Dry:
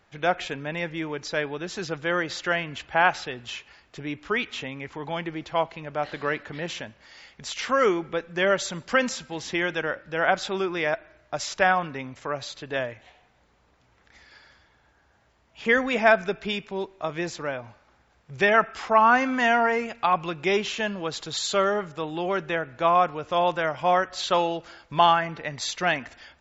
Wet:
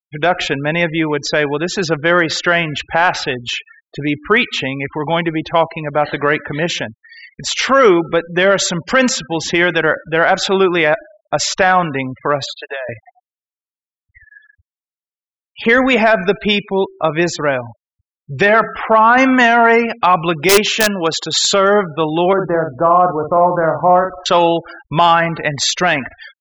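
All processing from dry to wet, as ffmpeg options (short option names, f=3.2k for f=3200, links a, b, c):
-filter_complex "[0:a]asettb=1/sr,asplit=3[a][b][c];[a]atrim=end=12.464[d];[b]atrim=start=12.46:end=12.89,asetpts=PTS-STARTPTS,afade=t=in:d=0.004:c=qsin,afade=t=out:st=0.426:d=0.004:c=qsin,highpass=f=510:w=0.5412,highpass=f=510:w=1.3066,adynamicequalizer=threshold=0.00224:dfrequency=5600:dqfactor=2.5:tfrequency=5600:tqfactor=2.5:attack=5:release=100:ratio=0.375:range=3:mode=cutabove:tftype=bell,acompressor=threshold=-34dB:ratio=10:attack=3.2:release=140:knee=1:detection=peak[e];[c]atrim=start=12.886[f];[d][e]acrossfade=d=0.004:c1=hsin:c2=qsin[g];[g][f]acrossfade=d=0.004:c1=qsin:c2=hsin,asettb=1/sr,asplit=3[h][i][j];[h]atrim=end=18.464[k];[i]atrim=start=18.46:end=19.18,asetpts=PTS-STARTPTS,afade=t=in:d=0.004:c=qsin,afade=t=out:st=0.716:d=0.004:c=qsin,lowpass=2.6k,bandreject=f=60:t=h:w=6,bandreject=f=120:t=h:w=6,bandreject=f=180:t=h:w=6,bandreject=f=240:t=h:w=6,bandreject=f=300:t=h:w=6,bandreject=f=360:t=h:w=6,bandreject=f=420:t=h:w=6[l];[j]atrim=start=19.176[m];[k][l]acrossfade=d=0.004:c1=hsin:c2=qsin[n];[n][m]acrossfade=d=0.004:c1=qsin:c2=hsin,asettb=1/sr,asplit=3[o][p][q];[o]atrim=end=20.494[r];[p]atrim=start=20.49:end=21.51,asetpts=PTS-STARTPTS,afade=t=in:d=0.004:c=qsin,afade=t=out:st=1.016:d=0.004:c=qsin,highpass=f=180:p=1,aeval=exprs='(mod(6.31*val(0)+1,2)-1)/6.31':c=same[s];[q]atrim=start=21.506[t];[r][s]acrossfade=d=0.004:c1=hsin:c2=qsin[u];[u][t]acrossfade=d=0.004:c1=qsin:c2=hsin,asettb=1/sr,asplit=3[v][w][x];[v]atrim=end=22.334[y];[w]atrim=start=22.33:end=24.26,asetpts=PTS-STARTPTS,afade=t=in:d=0.004:c=qsin,afade=t=out:st=1.926:d=0.004:c=qsin,lowpass=f=1.3k:w=0.5412,lowpass=f=1.3k:w=1.3066,acompressor=threshold=-28dB:ratio=1.5:attack=3.2:release=140:knee=1:detection=peak,asplit=2[z][aa];[aa]adelay=50,volume=-6dB[ab];[z][ab]amix=inputs=2:normalize=0,atrim=end_sample=85113[ac];[x]atrim=start=24.256[ad];[y][ac]acrossfade=d=0.004:c1=hsin:c2=qsin[ae];[ae][ad]acrossfade=d=0.004:c1=qsin:c2=hsin,afftfilt=real='re*gte(hypot(re,im),0.01)':imag='im*gte(hypot(re,im),0.01)':win_size=1024:overlap=0.75,acontrast=37,alimiter=level_in=10dB:limit=-1dB:release=50:level=0:latency=1,volume=-1dB"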